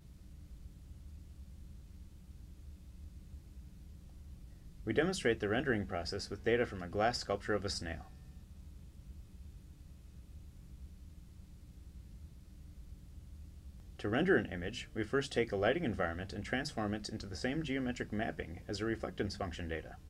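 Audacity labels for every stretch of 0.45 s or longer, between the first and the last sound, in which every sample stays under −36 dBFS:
7.970000	14.000000	silence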